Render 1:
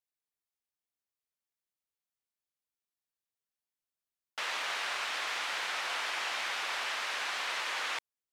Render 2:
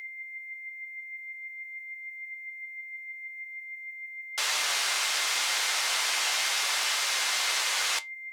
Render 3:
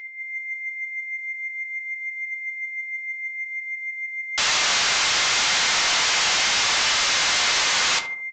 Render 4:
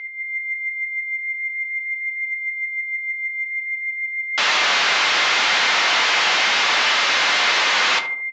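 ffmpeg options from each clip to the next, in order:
-af "aeval=exprs='val(0)+0.00794*sin(2*PI*2100*n/s)':c=same,flanger=delay=6.5:depth=3.5:regen=67:speed=0.44:shape=triangular,bass=f=250:g=-7,treble=f=4000:g=15,volume=2.24"
-filter_complex "[0:a]dynaudnorm=f=150:g=3:m=2.51,aresample=16000,asoftclip=type=tanh:threshold=0.1,aresample=44100,asplit=2[s0][s1];[s1]adelay=74,lowpass=f=1200:p=1,volume=0.398,asplit=2[s2][s3];[s3]adelay=74,lowpass=f=1200:p=1,volume=0.48,asplit=2[s4][s5];[s5]adelay=74,lowpass=f=1200:p=1,volume=0.48,asplit=2[s6][s7];[s7]adelay=74,lowpass=f=1200:p=1,volume=0.48,asplit=2[s8][s9];[s9]adelay=74,lowpass=f=1200:p=1,volume=0.48,asplit=2[s10][s11];[s11]adelay=74,lowpass=f=1200:p=1,volume=0.48[s12];[s0][s2][s4][s6][s8][s10][s12]amix=inputs=7:normalize=0,volume=1.5"
-af "highpass=240,lowpass=3500,volume=1.88"

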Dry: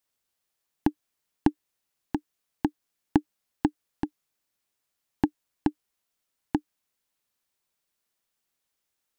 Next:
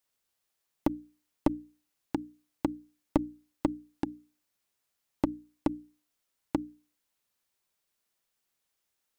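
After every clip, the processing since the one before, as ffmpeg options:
-af "aeval=exprs='clip(val(0),-1,0.1)':c=same,bandreject=f=60:t=h:w=6,bandreject=f=120:t=h:w=6,bandreject=f=180:t=h:w=6,bandreject=f=240:t=h:w=6,bandreject=f=300:t=h:w=6"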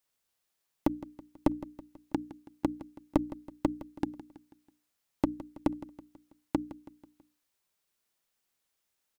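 -af "aecho=1:1:163|326|489|652:0.158|0.0792|0.0396|0.0198"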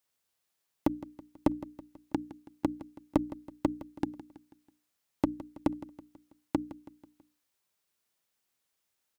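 -af "highpass=43"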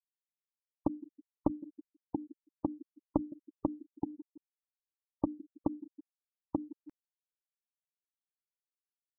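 -af "afftfilt=real='re*gte(hypot(re,im),0.0447)':imag='im*gte(hypot(re,im),0.0447)':win_size=1024:overlap=0.75,areverse,acompressor=mode=upward:threshold=0.0141:ratio=2.5,areverse,volume=0.631"

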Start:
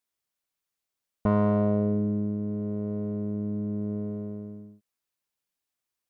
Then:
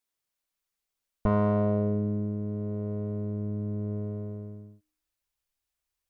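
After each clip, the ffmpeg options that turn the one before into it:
-af "bandreject=f=76.86:t=h:w=4,bandreject=f=153.72:t=h:w=4,bandreject=f=230.58:t=h:w=4,bandreject=f=307.44:t=h:w=4,bandreject=f=384.3:t=h:w=4,bandreject=f=461.16:t=h:w=4,bandreject=f=538.02:t=h:w=4,bandreject=f=614.88:t=h:w=4,bandreject=f=691.74:t=h:w=4,bandreject=f=768.6:t=h:w=4,bandreject=f=845.46:t=h:w=4,bandreject=f=922.32:t=h:w=4,bandreject=f=999.18:t=h:w=4,bandreject=f=1076.04:t=h:w=4,bandreject=f=1152.9:t=h:w=4,bandreject=f=1229.76:t=h:w=4,bandreject=f=1306.62:t=h:w=4,bandreject=f=1383.48:t=h:w=4,bandreject=f=1460.34:t=h:w=4,bandreject=f=1537.2:t=h:w=4,bandreject=f=1614.06:t=h:w=4,bandreject=f=1690.92:t=h:w=4,bandreject=f=1767.78:t=h:w=4,asubboost=boost=11:cutoff=57"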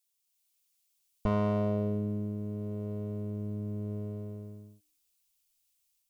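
-af "dynaudnorm=f=230:g=3:m=1.68,aexciter=amount=1.9:drive=9.3:freq=2400,volume=0.376"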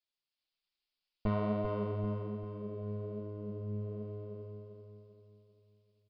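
-filter_complex "[0:a]flanger=delay=2.8:depth=6.4:regen=46:speed=1.2:shape=sinusoidal,asplit=2[s0][s1];[s1]aecho=0:1:393|786|1179|1572|1965:0.501|0.216|0.0927|0.0398|0.0171[s2];[s0][s2]amix=inputs=2:normalize=0,aresample=11025,aresample=44100"

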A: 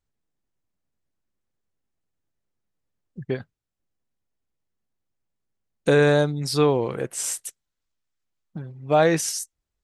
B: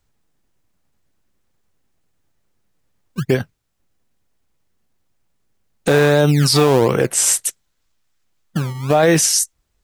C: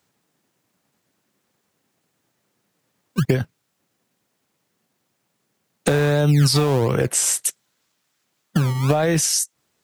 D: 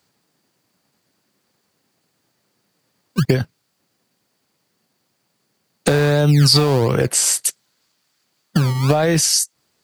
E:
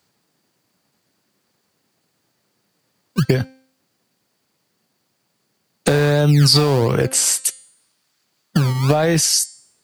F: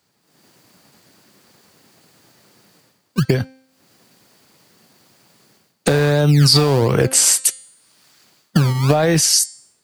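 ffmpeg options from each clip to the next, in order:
-filter_complex "[0:a]acrossover=split=310|2900[s0][s1][s2];[s0]acrusher=samples=29:mix=1:aa=0.000001:lfo=1:lforange=29:lforate=1.4[s3];[s3][s1][s2]amix=inputs=3:normalize=0,alimiter=level_in=7.94:limit=0.891:release=50:level=0:latency=1,volume=0.631"
-filter_complex "[0:a]acrossover=split=120[s0][s1];[s0]aeval=exprs='val(0)*gte(abs(val(0)),0.00316)':c=same[s2];[s1]acompressor=threshold=0.0794:ratio=8[s3];[s2][s3]amix=inputs=2:normalize=0,volume=1.78"
-af "equalizer=f=4600:w=7:g=9.5,volume=1.33"
-af "bandreject=f=262.4:t=h:w=4,bandreject=f=524.8:t=h:w=4,bandreject=f=787.2:t=h:w=4,bandreject=f=1049.6:t=h:w=4,bandreject=f=1312:t=h:w=4,bandreject=f=1574.4:t=h:w=4,bandreject=f=1836.8:t=h:w=4,bandreject=f=2099.2:t=h:w=4,bandreject=f=2361.6:t=h:w=4,bandreject=f=2624:t=h:w=4,bandreject=f=2886.4:t=h:w=4,bandreject=f=3148.8:t=h:w=4,bandreject=f=3411.2:t=h:w=4,bandreject=f=3673.6:t=h:w=4,bandreject=f=3936:t=h:w=4,bandreject=f=4198.4:t=h:w=4,bandreject=f=4460.8:t=h:w=4,bandreject=f=4723.2:t=h:w=4,bandreject=f=4985.6:t=h:w=4,bandreject=f=5248:t=h:w=4,bandreject=f=5510.4:t=h:w=4,bandreject=f=5772.8:t=h:w=4,bandreject=f=6035.2:t=h:w=4,bandreject=f=6297.6:t=h:w=4,bandreject=f=6560:t=h:w=4,bandreject=f=6822.4:t=h:w=4,bandreject=f=7084.8:t=h:w=4,bandreject=f=7347.2:t=h:w=4,bandreject=f=7609.6:t=h:w=4,bandreject=f=7872:t=h:w=4,bandreject=f=8134.4:t=h:w=4,bandreject=f=8396.8:t=h:w=4,bandreject=f=8659.2:t=h:w=4,bandreject=f=8921.6:t=h:w=4,bandreject=f=9184:t=h:w=4,bandreject=f=9446.4:t=h:w=4,bandreject=f=9708.8:t=h:w=4"
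-af "dynaudnorm=f=230:g=3:m=5.96,volume=0.891"

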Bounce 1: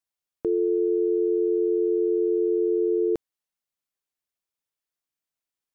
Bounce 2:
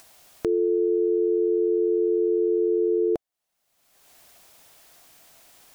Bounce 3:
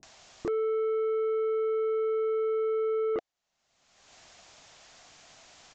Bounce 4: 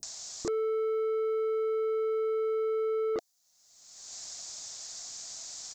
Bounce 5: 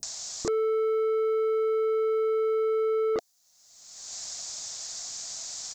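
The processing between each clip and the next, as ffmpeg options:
-af "equalizer=f=690:t=o:w=0.46:g=8.5,acompressor=mode=upward:threshold=0.0501:ratio=2.5"
-filter_complex "[0:a]acrossover=split=350[s0][s1];[s1]adelay=30[s2];[s0][s2]amix=inputs=2:normalize=0,aresample=16000,asoftclip=type=tanh:threshold=0.0355,aresample=44100,volume=1.41"
-af "aexciter=amount=6.9:drive=6.9:freq=4200,volume=0.841"
-af "equalizer=f=340:t=o:w=0.48:g=-3.5,volume=1.78"

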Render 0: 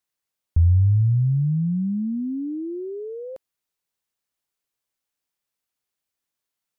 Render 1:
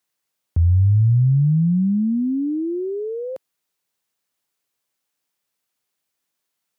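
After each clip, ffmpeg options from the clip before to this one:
-af "highpass=110,volume=2"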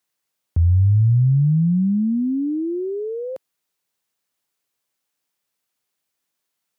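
-af anull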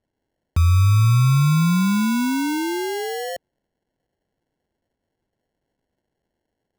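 -af "acrusher=samples=36:mix=1:aa=0.000001"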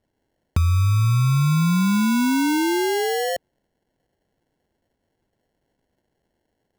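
-af "acompressor=threshold=0.0794:ratio=4,volume=1.68"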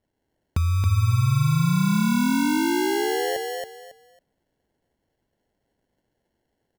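-af "aecho=1:1:275|550|825:0.668|0.154|0.0354,volume=0.668"

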